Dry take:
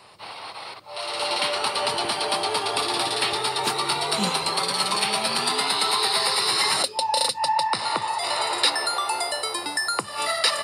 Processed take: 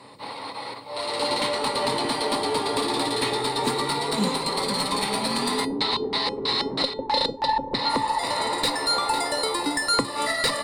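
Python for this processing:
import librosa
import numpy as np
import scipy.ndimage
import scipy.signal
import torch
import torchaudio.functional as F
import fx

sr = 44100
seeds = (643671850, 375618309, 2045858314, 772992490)

y = fx.ripple_eq(x, sr, per_octave=1.0, db=7)
y = fx.tube_stage(y, sr, drive_db=13.0, bias=0.45)
y = fx.peak_eq(y, sr, hz=250.0, db=12.0, octaves=2.6)
y = fx.echo_feedback(y, sr, ms=502, feedback_pct=40, wet_db=-11.0)
y = fx.filter_lfo_lowpass(y, sr, shape='square', hz=3.1, low_hz=390.0, high_hz=4000.0, q=1.7, at=(5.64, 7.88), fade=0.02)
y = fx.rider(y, sr, range_db=3, speed_s=0.5)
y = fx.comb_fb(y, sr, f0_hz=280.0, decay_s=0.25, harmonics='odd', damping=0.0, mix_pct=70)
y = y * librosa.db_to_amplitude(6.0)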